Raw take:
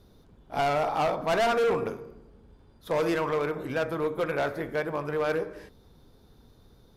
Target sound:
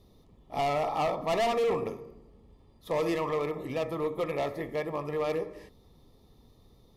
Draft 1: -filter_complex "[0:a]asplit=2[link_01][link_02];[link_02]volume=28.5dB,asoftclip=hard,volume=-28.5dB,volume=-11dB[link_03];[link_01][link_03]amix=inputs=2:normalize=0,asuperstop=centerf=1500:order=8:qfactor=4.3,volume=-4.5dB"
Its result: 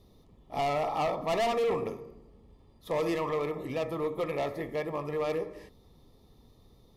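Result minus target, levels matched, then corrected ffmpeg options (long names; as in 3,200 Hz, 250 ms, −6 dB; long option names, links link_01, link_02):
gain into a clipping stage and back: distortion +20 dB
-filter_complex "[0:a]asplit=2[link_01][link_02];[link_02]volume=22dB,asoftclip=hard,volume=-22dB,volume=-11dB[link_03];[link_01][link_03]amix=inputs=2:normalize=0,asuperstop=centerf=1500:order=8:qfactor=4.3,volume=-4.5dB"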